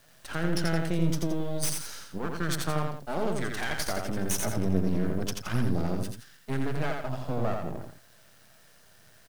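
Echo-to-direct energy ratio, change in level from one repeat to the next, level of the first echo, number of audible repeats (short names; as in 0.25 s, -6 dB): -3.5 dB, -8.0 dB, -4.0 dB, 2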